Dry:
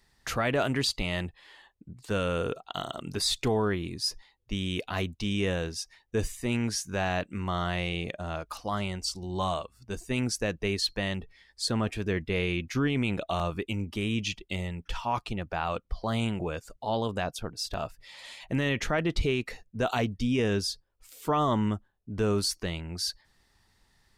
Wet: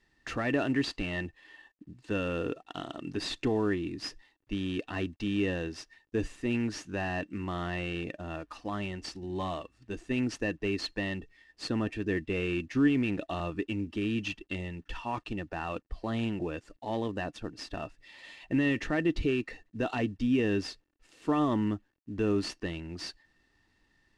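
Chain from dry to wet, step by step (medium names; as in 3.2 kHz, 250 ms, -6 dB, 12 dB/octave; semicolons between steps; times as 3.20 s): CVSD coder 64 kbps; distance through air 83 m; small resonant body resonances 300/1800/2700 Hz, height 12 dB, ringing for 35 ms; trim -5.5 dB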